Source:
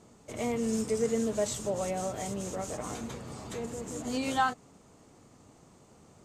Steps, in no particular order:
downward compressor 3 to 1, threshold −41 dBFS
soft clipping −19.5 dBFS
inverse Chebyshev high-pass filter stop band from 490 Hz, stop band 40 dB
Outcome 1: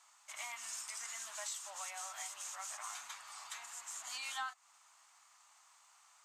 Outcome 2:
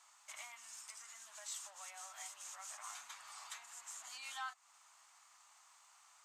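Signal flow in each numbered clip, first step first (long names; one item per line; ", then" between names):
inverse Chebyshev high-pass filter, then soft clipping, then downward compressor
soft clipping, then downward compressor, then inverse Chebyshev high-pass filter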